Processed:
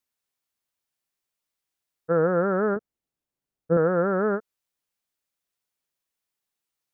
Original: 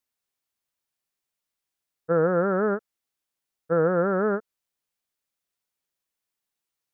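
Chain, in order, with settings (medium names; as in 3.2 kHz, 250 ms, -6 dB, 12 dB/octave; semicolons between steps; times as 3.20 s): 2.76–3.77 s: tilt shelf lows +7.5 dB, about 650 Hz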